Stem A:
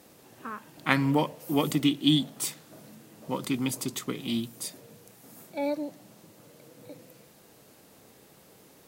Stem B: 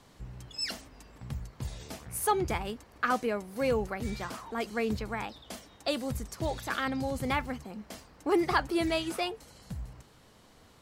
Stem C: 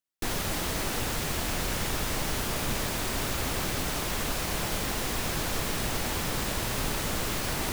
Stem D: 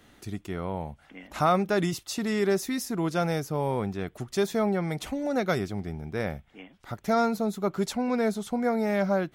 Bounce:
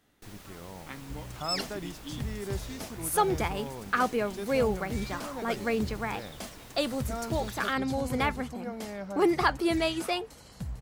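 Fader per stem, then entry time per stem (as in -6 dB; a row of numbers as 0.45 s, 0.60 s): -20.0 dB, +2.0 dB, -19.5 dB, -13.0 dB; 0.00 s, 0.90 s, 0.00 s, 0.00 s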